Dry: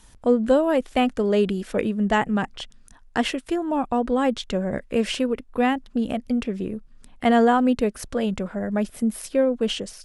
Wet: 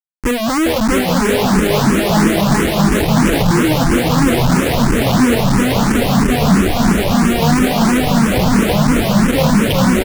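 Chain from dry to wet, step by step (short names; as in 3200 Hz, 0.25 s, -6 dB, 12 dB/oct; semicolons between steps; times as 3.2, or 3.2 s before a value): Wiener smoothing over 41 samples; low shelf 490 Hz +9.5 dB; notch 760 Hz, Q 15; feedback echo 0.402 s, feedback 57%, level -4 dB; Schmitt trigger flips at -30.5 dBFS; echoes that change speed 0.59 s, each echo -4 st, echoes 2; endless phaser +3 Hz; gain +5 dB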